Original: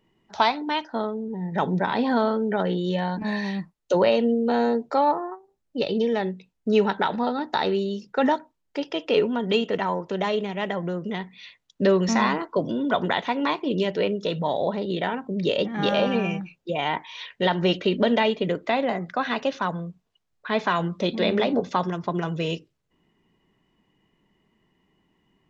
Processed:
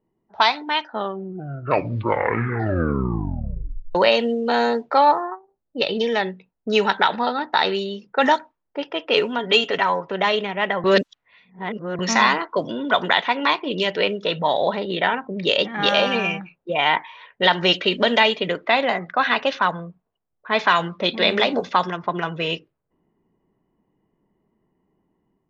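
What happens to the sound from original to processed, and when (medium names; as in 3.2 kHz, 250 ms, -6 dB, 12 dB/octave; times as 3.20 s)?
0.81 s: tape stop 3.14 s
9.38–10.11 s: comb 7.2 ms, depth 44%
10.84–11.99 s: reverse
whole clip: level-controlled noise filter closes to 530 Hz, open at -16.5 dBFS; tilt shelf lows -7.5 dB, about 640 Hz; level rider gain up to 5 dB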